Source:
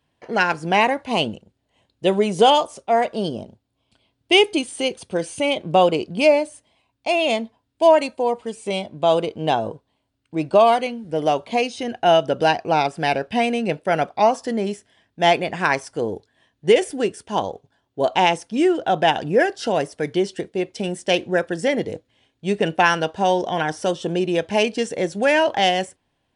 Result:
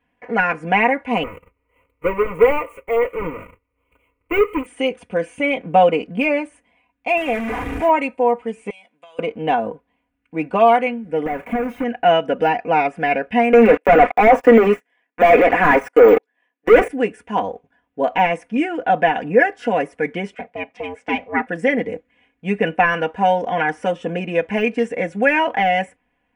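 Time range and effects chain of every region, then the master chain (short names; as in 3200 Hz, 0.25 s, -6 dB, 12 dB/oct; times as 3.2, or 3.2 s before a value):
1.23–4.66 half-waves squared off + bell 3600 Hz -14.5 dB 0.34 oct + fixed phaser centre 1100 Hz, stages 8
7.17–7.89 delta modulation 64 kbps, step -19 dBFS + comb 2.5 ms, depth 33% + short-mantissa float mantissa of 4-bit
8.7–9.19 differentiator + compressor 12:1, threshold -40 dBFS
11.26–11.84 half-waves squared off + compressor 12:1, threshold -20 dBFS + bell 4600 Hz -7.5 dB 1.5 oct
13.53–16.88 HPF 300 Hz 24 dB/oct + sample leveller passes 5
20.34–21.47 ring modulator 270 Hz + BPF 200–5600 Hz
whole clip: de-esser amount 65%; resonant high shelf 3100 Hz -11 dB, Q 3; comb 4.1 ms, depth 82%; gain -1 dB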